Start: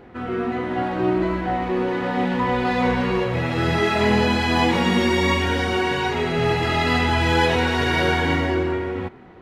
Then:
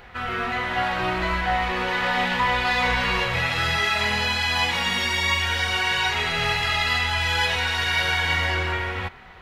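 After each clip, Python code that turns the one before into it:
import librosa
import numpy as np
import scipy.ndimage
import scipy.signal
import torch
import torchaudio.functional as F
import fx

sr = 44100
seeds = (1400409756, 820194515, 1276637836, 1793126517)

y = fx.tone_stack(x, sr, knobs='10-0-10')
y = fx.rider(y, sr, range_db=5, speed_s=0.5)
y = fx.graphic_eq(y, sr, hz=(125, 250, 8000), db=(-4, 3, -3))
y = F.gain(torch.from_numpy(y), 8.0).numpy()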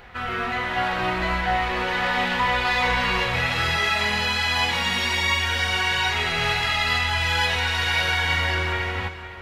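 y = x + 10.0 ** (-12.0 / 20.0) * np.pad(x, (int(507 * sr / 1000.0), 0))[:len(x)]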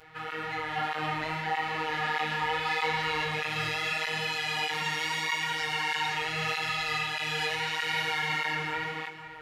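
y = fx.robotise(x, sr, hz=156.0)
y = fx.doubler(y, sr, ms=17.0, db=-7.0)
y = fx.flanger_cancel(y, sr, hz=1.6, depth_ms=6.0)
y = F.gain(torch.from_numpy(y), -2.5).numpy()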